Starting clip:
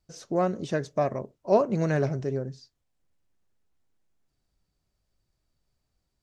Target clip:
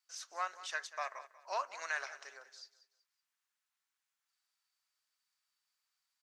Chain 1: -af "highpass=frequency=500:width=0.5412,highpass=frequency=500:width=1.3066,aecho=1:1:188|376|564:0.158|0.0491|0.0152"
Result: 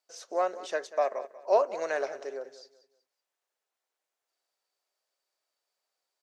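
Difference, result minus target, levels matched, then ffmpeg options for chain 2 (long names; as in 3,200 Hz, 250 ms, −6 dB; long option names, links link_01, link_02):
500 Hz band +10.0 dB
-af "highpass=frequency=1100:width=0.5412,highpass=frequency=1100:width=1.3066,aecho=1:1:188|376|564:0.158|0.0491|0.0152"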